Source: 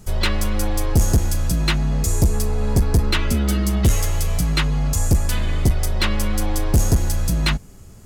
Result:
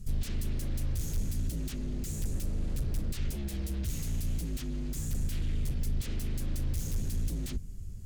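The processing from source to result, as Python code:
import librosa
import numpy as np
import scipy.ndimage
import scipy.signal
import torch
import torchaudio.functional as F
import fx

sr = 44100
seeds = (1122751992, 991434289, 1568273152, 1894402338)

y = fx.fold_sine(x, sr, drive_db=14, ceiling_db=-9.5)
y = fx.tone_stack(y, sr, knobs='10-0-1')
y = y * librosa.db_to_amplitude(-7.5)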